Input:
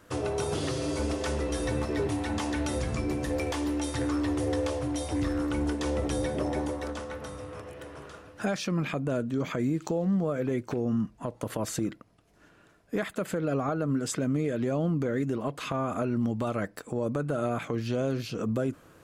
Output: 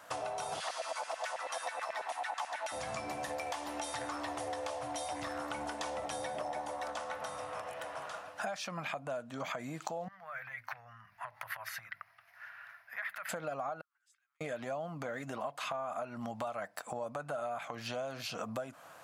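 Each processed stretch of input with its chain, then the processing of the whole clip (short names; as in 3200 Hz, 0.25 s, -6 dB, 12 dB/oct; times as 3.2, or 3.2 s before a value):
0.6–2.72 LFO high-pass saw down 9.2 Hz 570–2100 Hz + overloaded stage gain 22.5 dB
10.08–13.29 notches 50/100/150/200/250/300 Hz + compressor 3:1, threshold -41 dBFS + EQ curve 120 Hz 0 dB, 200 Hz -20 dB, 360 Hz -28 dB, 510 Hz -15 dB, 780 Hz -7 dB, 1900 Hz +13 dB, 3300 Hz -3 dB, 5200 Hz -2 dB, 7700 Hz -18 dB, 12000 Hz +4 dB
13.81–14.41 gate -22 dBFS, range -39 dB + steep high-pass 1200 Hz + frequency shift +71 Hz
whole clip: HPF 140 Hz 12 dB/oct; resonant low shelf 520 Hz -10 dB, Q 3; compressor, threshold -39 dBFS; gain +3 dB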